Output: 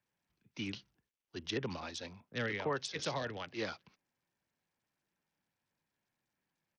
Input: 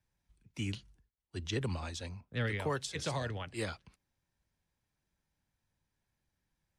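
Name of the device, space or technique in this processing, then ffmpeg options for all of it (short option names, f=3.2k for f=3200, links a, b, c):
Bluetooth headset: -af "highpass=190,aresample=16000,aresample=44100" -ar 48000 -c:a sbc -b:a 64k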